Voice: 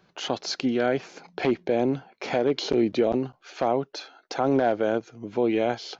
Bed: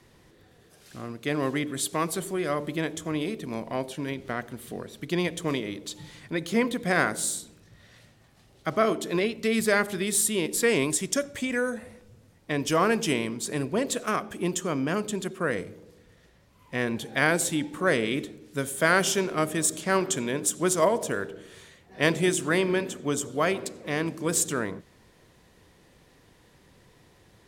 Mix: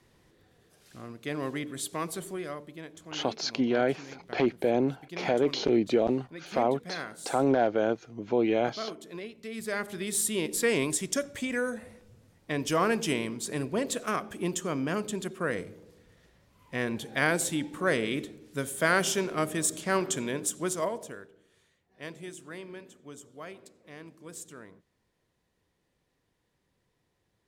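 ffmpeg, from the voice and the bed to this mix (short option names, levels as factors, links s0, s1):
-filter_complex "[0:a]adelay=2950,volume=0.794[s0];[1:a]volume=1.88,afade=t=out:st=2.32:d=0.33:silence=0.375837,afade=t=in:st=9.51:d=0.85:silence=0.266073,afade=t=out:st=20.27:d=1.02:silence=0.16788[s1];[s0][s1]amix=inputs=2:normalize=0"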